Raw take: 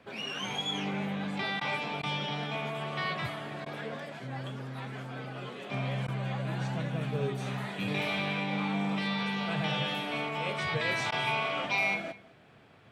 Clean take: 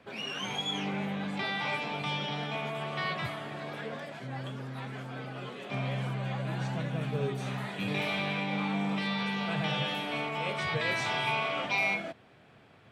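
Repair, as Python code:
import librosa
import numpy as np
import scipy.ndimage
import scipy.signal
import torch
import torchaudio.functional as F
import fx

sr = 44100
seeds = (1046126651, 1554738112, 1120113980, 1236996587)

y = fx.fix_interpolate(x, sr, at_s=(1.6, 2.02, 3.65, 6.07, 11.11), length_ms=10.0)
y = fx.fix_echo_inverse(y, sr, delay_ms=204, level_db=-20.5)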